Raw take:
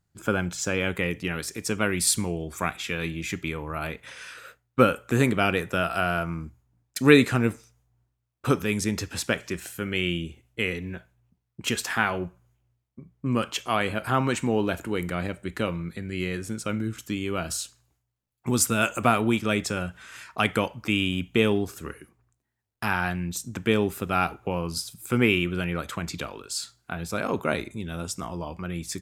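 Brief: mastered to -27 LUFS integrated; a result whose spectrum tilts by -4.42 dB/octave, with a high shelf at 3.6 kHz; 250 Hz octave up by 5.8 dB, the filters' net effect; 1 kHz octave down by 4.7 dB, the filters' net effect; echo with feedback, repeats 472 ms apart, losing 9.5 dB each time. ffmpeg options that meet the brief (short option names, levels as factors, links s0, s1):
-af "equalizer=f=250:t=o:g=7.5,equalizer=f=1000:t=o:g=-8.5,highshelf=f=3600:g=5.5,aecho=1:1:472|944|1416|1888:0.335|0.111|0.0365|0.012,volume=0.668"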